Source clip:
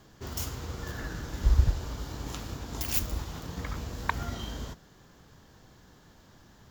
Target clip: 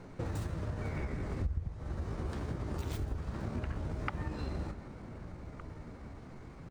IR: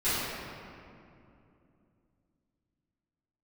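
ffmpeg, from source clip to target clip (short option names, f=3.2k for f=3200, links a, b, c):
-filter_complex "[0:a]asplit=2[a][b];[b]adelay=1516,volume=-22dB,highshelf=f=4k:g=-34.1[c];[a][c]amix=inputs=2:normalize=0,asetrate=57191,aresample=44100,atempo=0.771105,lowpass=f=1.1k:p=1,asplit=2[d][e];[e]asetrate=29433,aresample=44100,atempo=1.49831,volume=-5dB[f];[d][f]amix=inputs=2:normalize=0,asplit=2[g][h];[1:a]atrim=start_sample=2205,asetrate=32634,aresample=44100,adelay=122[i];[h][i]afir=irnorm=-1:irlink=0,volume=-34dB[j];[g][j]amix=inputs=2:normalize=0,acompressor=threshold=-40dB:ratio=6,volume=6.5dB"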